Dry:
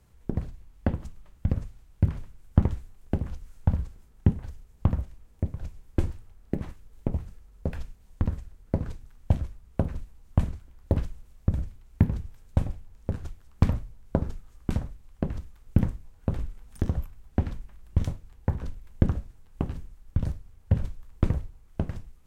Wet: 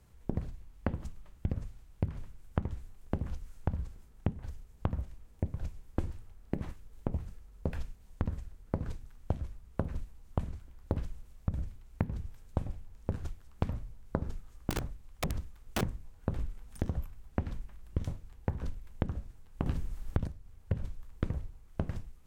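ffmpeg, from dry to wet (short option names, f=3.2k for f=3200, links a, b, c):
-filter_complex "[0:a]asettb=1/sr,asplit=3[a][b][c];[a]atrim=end=14.704[d];[b]atrim=start=14.7:end=15.82,asetpts=PTS-STARTPTS,afade=t=in:d=0.004:c=qsin,afade=t=out:st=1.116:d=0.004:c=qsin,aeval=exprs='(mod(12.6*val(0)+1,2)-1)/12.6':c=same[e];[c]atrim=start=15.816[f];[d][e]acrossfade=d=0.004:c1=hsin:c2=qsin[g];[g][f]acrossfade=d=0.004:c1=qsin:c2=hsin,asplit=3[h][i][j];[h]atrim=end=19.662[k];[i]atrim=start=19.658:end=20.272,asetpts=PTS-STARTPTS,volume=11dB[l];[j]atrim=start=20.268[m];[k][l]acrossfade=d=0.004:c1=hsin:c2=hsin[n];[n][m]acrossfade=d=0.004:c1=hsin:c2=hsin,acompressor=threshold=-26dB:ratio=10,volume=-1dB"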